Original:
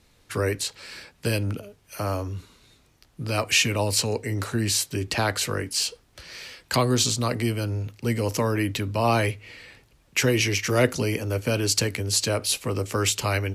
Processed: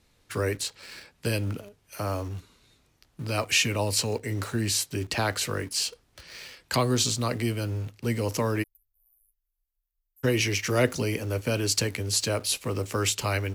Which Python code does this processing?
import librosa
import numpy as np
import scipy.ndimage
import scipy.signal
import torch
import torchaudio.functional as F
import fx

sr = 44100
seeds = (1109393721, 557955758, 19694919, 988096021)

p1 = fx.cheby2_bandstop(x, sr, low_hz=110.0, high_hz=5200.0, order=4, stop_db=70, at=(8.62, 10.23), fade=0.02)
p2 = fx.quant_dither(p1, sr, seeds[0], bits=6, dither='none')
p3 = p1 + (p2 * librosa.db_to_amplitude(-10.0))
y = p3 * librosa.db_to_amplitude(-5.0)